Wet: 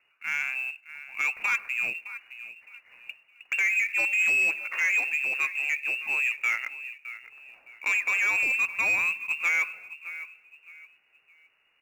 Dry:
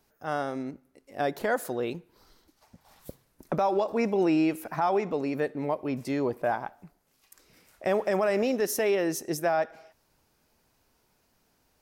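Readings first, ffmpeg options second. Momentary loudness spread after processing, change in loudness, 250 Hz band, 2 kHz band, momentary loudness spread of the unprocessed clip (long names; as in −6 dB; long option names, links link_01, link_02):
18 LU, +3.5 dB, below −25 dB, +14.5 dB, 9 LU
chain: -filter_complex "[0:a]asplit=2[link_01][link_02];[link_02]adelay=614,lowpass=frequency=1200:poles=1,volume=-14dB,asplit=2[link_03][link_04];[link_04]adelay=614,lowpass=frequency=1200:poles=1,volume=0.33,asplit=2[link_05][link_06];[link_06]adelay=614,lowpass=frequency=1200:poles=1,volume=0.33[link_07];[link_01][link_03][link_05][link_07]amix=inputs=4:normalize=0,lowpass=frequency=2500:width_type=q:width=0.5098,lowpass=frequency=2500:width_type=q:width=0.6013,lowpass=frequency=2500:width_type=q:width=0.9,lowpass=frequency=2500:width_type=q:width=2.563,afreqshift=-2900,asplit=2[link_08][link_09];[link_09]acrusher=bits=2:mode=log:mix=0:aa=0.000001,volume=-11.5dB[link_10];[link_08][link_10]amix=inputs=2:normalize=0,asoftclip=type=tanh:threshold=-18dB"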